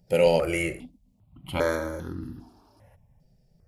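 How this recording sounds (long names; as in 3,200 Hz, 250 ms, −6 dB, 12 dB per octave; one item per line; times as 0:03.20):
notches that jump at a steady rate 2.5 Hz 290–2,300 Hz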